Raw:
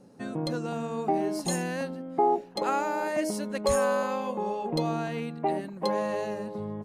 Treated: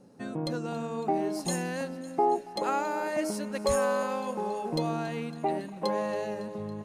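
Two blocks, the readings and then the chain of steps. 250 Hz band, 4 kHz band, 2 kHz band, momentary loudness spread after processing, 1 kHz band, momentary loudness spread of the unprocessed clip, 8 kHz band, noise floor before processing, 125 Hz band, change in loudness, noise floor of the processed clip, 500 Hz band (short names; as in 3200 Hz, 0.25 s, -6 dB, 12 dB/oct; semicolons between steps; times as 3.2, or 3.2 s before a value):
-1.5 dB, -1.5 dB, -1.5 dB, 8 LU, -1.5 dB, 8 LU, -1.5 dB, -44 dBFS, -1.5 dB, -1.5 dB, -43 dBFS, -1.5 dB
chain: thinning echo 0.278 s, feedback 78%, high-pass 770 Hz, level -17.5 dB; gain -1.5 dB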